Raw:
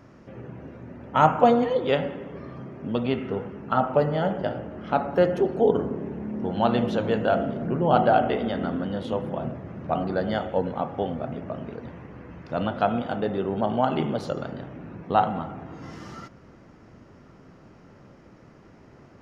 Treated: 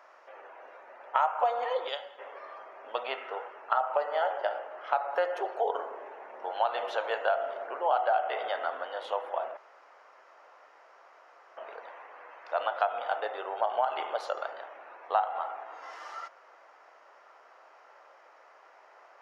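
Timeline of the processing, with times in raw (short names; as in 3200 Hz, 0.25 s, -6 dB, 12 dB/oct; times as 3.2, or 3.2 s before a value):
1.89–2.19 spectral gain 240–2900 Hz -12 dB
9.57–11.57 room tone
whole clip: inverse Chebyshev high-pass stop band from 200 Hz, stop band 60 dB; high shelf 2500 Hz -11.5 dB; compressor 5:1, threshold -29 dBFS; gain +5.5 dB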